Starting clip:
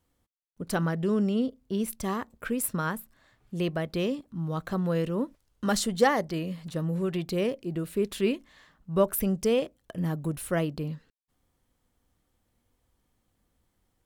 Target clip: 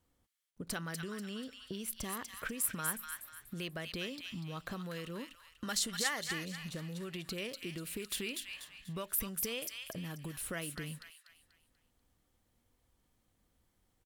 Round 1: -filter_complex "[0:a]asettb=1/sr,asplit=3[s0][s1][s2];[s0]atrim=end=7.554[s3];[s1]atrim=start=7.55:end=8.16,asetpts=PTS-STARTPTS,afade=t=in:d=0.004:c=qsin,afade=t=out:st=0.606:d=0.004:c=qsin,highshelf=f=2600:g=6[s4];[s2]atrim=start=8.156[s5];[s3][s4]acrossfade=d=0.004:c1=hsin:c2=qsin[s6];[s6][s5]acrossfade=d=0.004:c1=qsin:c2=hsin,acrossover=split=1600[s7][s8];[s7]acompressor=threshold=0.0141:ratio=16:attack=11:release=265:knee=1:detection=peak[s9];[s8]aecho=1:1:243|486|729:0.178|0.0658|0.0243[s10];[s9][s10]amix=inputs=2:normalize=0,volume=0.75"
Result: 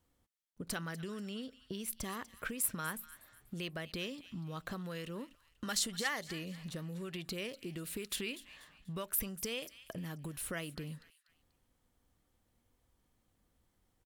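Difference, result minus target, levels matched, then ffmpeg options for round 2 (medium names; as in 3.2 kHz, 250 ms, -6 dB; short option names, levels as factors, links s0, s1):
echo-to-direct -11.5 dB
-filter_complex "[0:a]asettb=1/sr,asplit=3[s0][s1][s2];[s0]atrim=end=7.554[s3];[s1]atrim=start=7.55:end=8.16,asetpts=PTS-STARTPTS,afade=t=in:d=0.004:c=qsin,afade=t=out:st=0.606:d=0.004:c=qsin,highshelf=f=2600:g=6[s4];[s2]atrim=start=8.156[s5];[s3][s4]acrossfade=d=0.004:c1=hsin:c2=qsin[s6];[s6][s5]acrossfade=d=0.004:c1=qsin:c2=hsin,acrossover=split=1600[s7][s8];[s7]acompressor=threshold=0.0141:ratio=16:attack=11:release=265:knee=1:detection=peak[s9];[s8]aecho=1:1:243|486|729|972|1215:0.668|0.247|0.0915|0.0339|0.0125[s10];[s9][s10]amix=inputs=2:normalize=0,volume=0.75"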